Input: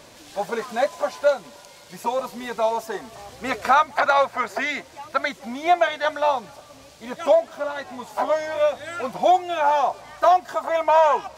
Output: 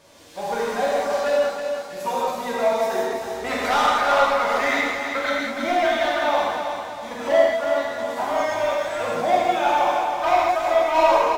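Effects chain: companding laws mixed up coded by A; in parallel at -1.5 dB: level held to a coarse grid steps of 15 dB; on the sum: feedback comb 94 Hz, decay 0.16 s, harmonics all, mix 70%; saturation -18.5 dBFS, distortion -9 dB; on a send: feedback delay 322 ms, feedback 45%, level -6.5 dB; on the sum: gated-style reverb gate 230 ms flat, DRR -6 dB; trim -1 dB

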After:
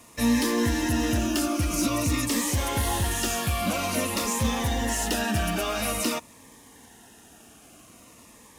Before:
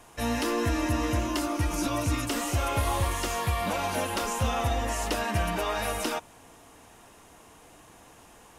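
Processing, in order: high-pass 42 Hz; treble shelf 2.4 kHz +5.5 dB; overload inside the chain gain 22 dB; in parallel at -11.5 dB: bit crusher 7-bit; on the sum: small resonant body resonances 230/1800 Hz, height 8 dB; Shepard-style phaser falling 0.49 Hz

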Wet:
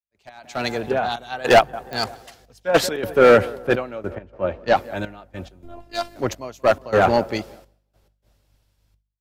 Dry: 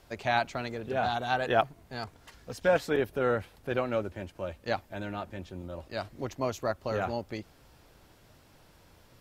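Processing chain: tape echo 181 ms, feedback 82%, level -18 dB, low-pass 1.5 kHz; trance gate ".x.xxxxx." 104 bpm -12 dB; 0.91–1.32 s: compression 12:1, threshold -32 dBFS, peak gain reduction 8.5 dB; bass shelf 110 Hz -10.5 dB; hard clipper -26.5 dBFS, distortion -9 dB; 4.15–4.76 s: distance through air 140 m; 5.63–6.16 s: robot voice 345 Hz; hum 50 Hz, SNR 24 dB; expander -55 dBFS; level rider gain up to 15.5 dB; clicks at 1.93 s, -12 dBFS; three bands expanded up and down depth 100%; trim -1.5 dB

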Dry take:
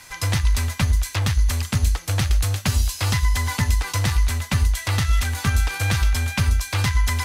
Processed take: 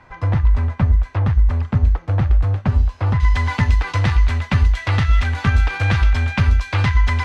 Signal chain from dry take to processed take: low-pass 1.1 kHz 12 dB/octave, from 3.20 s 2.7 kHz; trim +4.5 dB

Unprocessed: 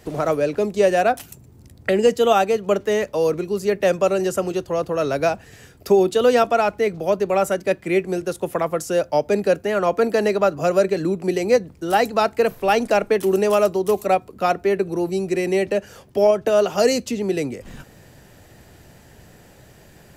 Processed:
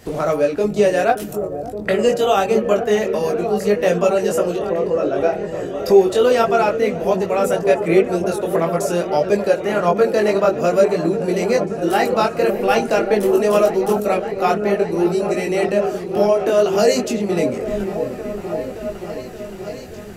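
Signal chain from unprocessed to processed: 4.56–5.89 s: resonances exaggerated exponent 1.5; de-hum 159.1 Hz, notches 22; in parallel at 0 dB: compression, threshold -28 dBFS, peak gain reduction 16.5 dB; on the sum: delay with an opening low-pass 573 ms, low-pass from 400 Hz, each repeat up 1 oct, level -6 dB; chorus voices 4, 0.47 Hz, delay 21 ms, depth 3.6 ms; trim +2.5 dB

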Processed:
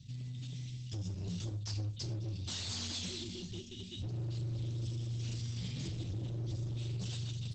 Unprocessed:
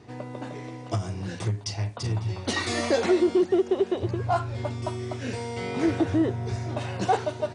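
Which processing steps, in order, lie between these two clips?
elliptic band-stop 170–3300 Hz, stop band 70 dB; 2.63–3.19 s: dynamic bell 1.5 kHz, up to -4 dB, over -60 dBFS, Q 2.6; 4.97–5.95 s: hum notches 50/100/150/200/250/300 Hz; compression 10:1, threshold -31 dBFS, peak gain reduction 8 dB; hard clipper -39 dBFS, distortion -8 dB; gated-style reverb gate 150 ms falling, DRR 9 dB; trim +2.5 dB; Opus 12 kbps 48 kHz

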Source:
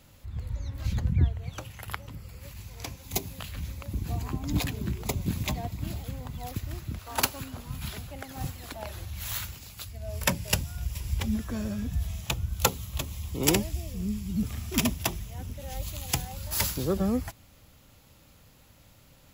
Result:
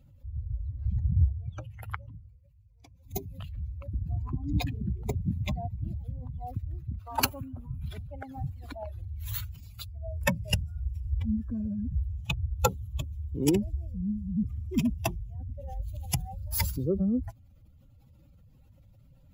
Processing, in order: spectral contrast enhancement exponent 2.1; 1.96–3.36 s: dip -17 dB, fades 0.46 s; 7.26–7.84 s: peaking EQ 4.5 kHz -13.5 dB 0.94 oct

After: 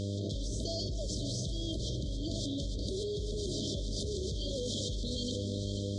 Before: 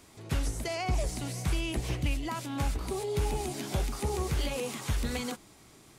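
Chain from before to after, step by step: Bessel low-pass 4.2 kHz, order 6; tilt shelf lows -6 dB, about 1.4 kHz; peak limiter -30.5 dBFS, peak gain reduction 7.5 dB; echo whose repeats swap between lows and highs 245 ms, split 910 Hz, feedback 71%, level -11 dB; mains buzz 100 Hz, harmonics 23, -47 dBFS -5 dB/octave; brick-wall FIR band-stop 670–3100 Hz; level flattener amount 100%

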